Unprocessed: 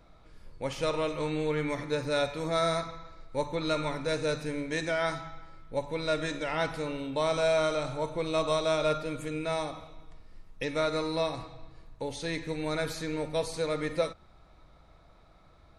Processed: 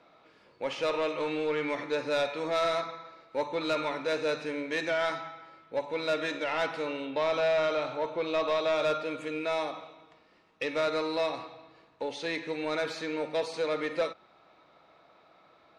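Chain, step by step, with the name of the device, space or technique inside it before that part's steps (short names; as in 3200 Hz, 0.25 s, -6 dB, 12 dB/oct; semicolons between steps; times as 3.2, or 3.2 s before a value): intercom (BPF 320–4400 Hz; bell 2700 Hz +4 dB 0.29 oct; soft clip -24.5 dBFS, distortion -15 dB); 7.05–8.76 LPF 5300 Hz 12 dB/oct; gain +3 dB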